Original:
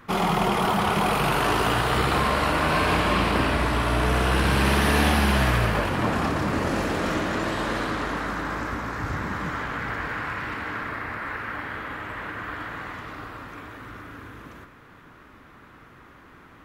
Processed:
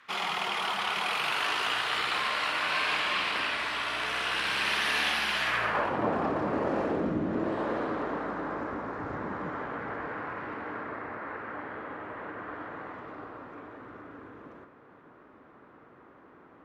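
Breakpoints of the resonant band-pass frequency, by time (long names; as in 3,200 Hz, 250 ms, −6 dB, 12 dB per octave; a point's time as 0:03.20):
resonant band-pass, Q 0.89
0:05.42 3,000 Hz
0:06.01 550 Hz
0:06.85 550 Hz
0:07.17 200 Hz
0:07.61 500 Hz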